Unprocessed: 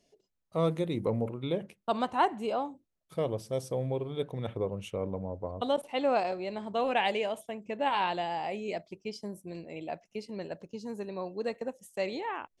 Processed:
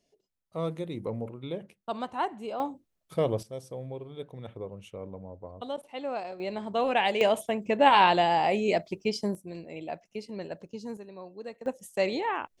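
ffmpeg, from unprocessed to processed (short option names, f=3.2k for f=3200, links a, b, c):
-af "asetnsamples=n=441:p=0,asendcmd='2.6 volume volume 4.5dB;3.43 volume volume -6.5dB;6.4 volume volume 2.5dB;7.21 volume volume 9.5dB;9.35 volume volume 1dB;10.97 volume volume -7dB;11.66 volume volume 5.5dB',volume=-4dB"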